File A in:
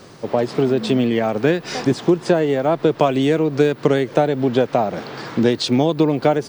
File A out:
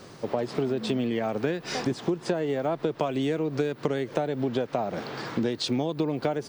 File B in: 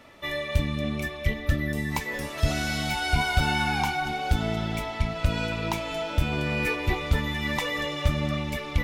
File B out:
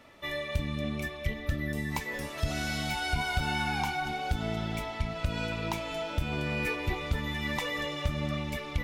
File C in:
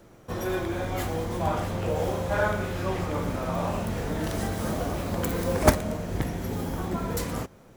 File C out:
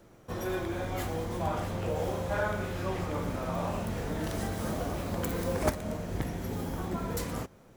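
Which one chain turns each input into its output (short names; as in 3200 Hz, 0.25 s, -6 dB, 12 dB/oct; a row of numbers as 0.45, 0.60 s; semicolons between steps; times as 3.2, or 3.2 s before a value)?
compressor 3:1, threshold -21 dBFS; gain -4 dB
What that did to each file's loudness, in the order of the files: -10.0, -5.0, -5.0 LU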